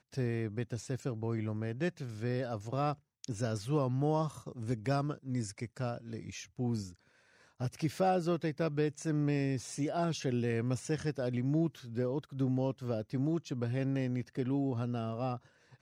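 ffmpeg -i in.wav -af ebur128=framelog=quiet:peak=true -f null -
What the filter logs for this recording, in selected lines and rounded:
Integrated loudness:
  I:         -35.0 LUFS
  Threshold: -45.2 LUFS
Loudness range:
  LRA:         3.5 LU
  Threshold: -55.0 LUFS
  LRA low:   -37.0 LUFS
  LRA high:  -33.5 LUFS
True peak:
  Peak:      -19.3 dBFS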